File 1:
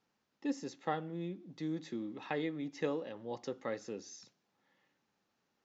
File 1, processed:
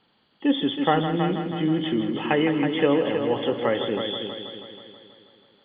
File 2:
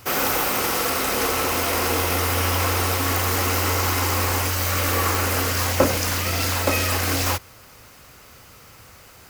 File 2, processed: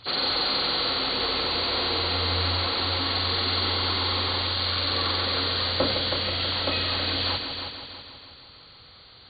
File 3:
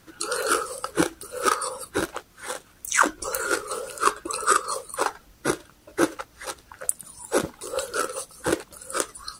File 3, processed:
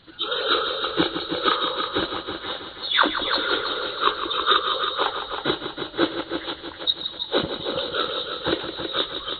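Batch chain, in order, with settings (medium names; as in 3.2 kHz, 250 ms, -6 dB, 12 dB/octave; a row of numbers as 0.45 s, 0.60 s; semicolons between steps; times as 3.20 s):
knee-point frequency compression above 2.8 kHz 4:1; transient shaper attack 0 dB, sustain +4 dB; multi-head delay 161 ms, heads first and second, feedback 53%, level -9.5 dB; normalise loudness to -24 LUFS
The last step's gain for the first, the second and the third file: +14.5 dB, -7.5 dB, 0.0 dB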